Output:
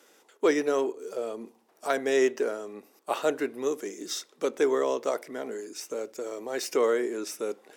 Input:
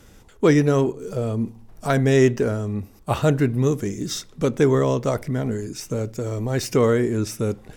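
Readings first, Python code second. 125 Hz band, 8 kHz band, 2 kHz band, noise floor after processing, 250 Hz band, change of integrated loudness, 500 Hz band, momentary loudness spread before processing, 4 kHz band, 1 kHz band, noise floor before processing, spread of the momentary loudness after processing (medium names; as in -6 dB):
under -35 dB, -4.5 dB, -4.5 dB, -64 dBFS, -12.0 dB, -7.5 dB, -5.0 dB, 11 LU, -4.5 dB, -4.5 dB, -50 dBFS, 12 LU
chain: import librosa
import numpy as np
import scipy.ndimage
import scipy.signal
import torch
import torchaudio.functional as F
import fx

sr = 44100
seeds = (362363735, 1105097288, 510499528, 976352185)

y = scipy.signal.sosfilt(scipy.signal.butter(4, 340.0, 'highpass', fs=sr, output='sos'), x)
y = y * 10.0 ** (-4.5 / 20.0)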